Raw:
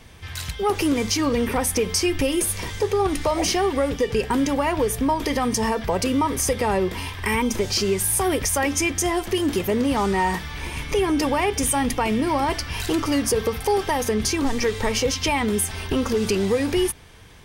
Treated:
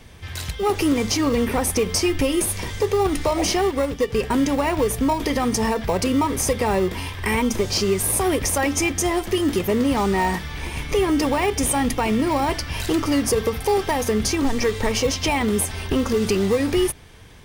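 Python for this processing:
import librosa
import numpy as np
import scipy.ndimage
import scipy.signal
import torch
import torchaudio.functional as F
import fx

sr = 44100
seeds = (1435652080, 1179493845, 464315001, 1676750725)

p1 = fx.sample_hold(x, sr, seeds[0], rate_hz=1600.0, jitter_pct=0)
p2 = x + (p1 * librosa.db_to_amplitude(-11.5))
y = fx.upward_expand(p2, sr, threshold_db=-27.0, expansion=1.5, at=(3.71, 4.21))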